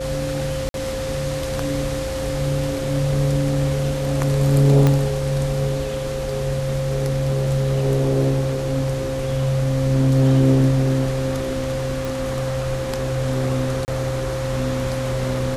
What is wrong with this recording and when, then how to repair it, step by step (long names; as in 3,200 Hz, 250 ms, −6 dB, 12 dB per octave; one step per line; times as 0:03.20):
whistle 530 Hz −25 dBFS
0:00.69–0:00.74: drop-out 52 ms
0:04.87: click −5 dBFS
0:12.05: click
0:13.85–0:13.88: drop-out 29 ms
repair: click removal
notch filter 530 Hz, Q 30
repair the gap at 0:00.69, 52 ms
repair the gap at 0:13.85, 29 ms